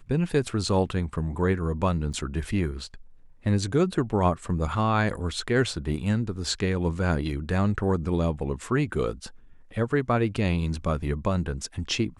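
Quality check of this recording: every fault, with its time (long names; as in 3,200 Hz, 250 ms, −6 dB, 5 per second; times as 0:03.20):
0:02.13–0:02.14: drop-out 7.4 ms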